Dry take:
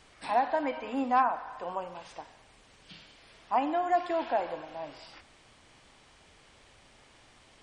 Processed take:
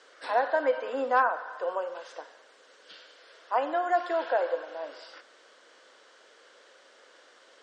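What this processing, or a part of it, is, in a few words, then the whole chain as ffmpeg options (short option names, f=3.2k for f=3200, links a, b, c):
phone speaker on a table: -filter_complex "[0:a]highpass=f=350:w=0.5412,highpass=f=350:w=1.3066,equalizer=f=510:t=q:w=4:g=9,equalizer=f=820:t=q:w=4:g=-6,equalizer=f=1.5k:t=q:w=4:g=8,equalizer=f=2.4k:t=q:w=4:g=-7,lowpass=f=7.5k:w=0.5412,lowpass=f=7.5k:w=1.3066,asettb=1/sr,asplit=3[a][b][c];[a]atrim=end=2.944[d];[b]atrim=start=2.94:end=4.68,asetpts=PTS-STARTPTS,afade=t=in:d=0.004:c=qsin,afade=t=out:st=1.736:d=0.004:c=qsin,highpass=290[e];[c]atrim=start=4.676[f];[d][e]acrossfade=d=0.004:c1=hsin:c2=qsin[g];[g][f]acrossfade=d=0.004:c1=qsin:c2=hsin,volume=2dB"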